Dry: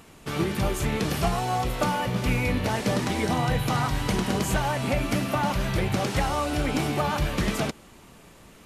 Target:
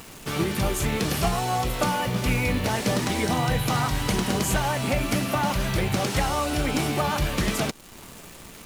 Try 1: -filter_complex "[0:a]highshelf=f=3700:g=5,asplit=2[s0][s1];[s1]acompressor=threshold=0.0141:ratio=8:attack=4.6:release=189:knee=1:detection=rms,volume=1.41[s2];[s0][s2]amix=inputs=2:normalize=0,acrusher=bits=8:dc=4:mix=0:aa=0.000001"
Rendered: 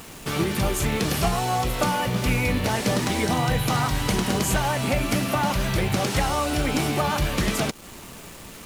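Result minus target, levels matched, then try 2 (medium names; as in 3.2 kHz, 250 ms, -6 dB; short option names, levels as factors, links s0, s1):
compression: peak gain reduction -10.5 dB
-filter_complex "[0:a]highshelf=f=3700:g=5,asplit=2[s0][s1];[s1]acompressor=threshold=0.00355:ratio=8:attack=4.6:release=189:knee=1:detection=rms,volume=1.41[s2];[s0][s2]amix=inputs=2:normalize=0,acrusher=bits=8:dc=4:mix=0:aa=0.000001"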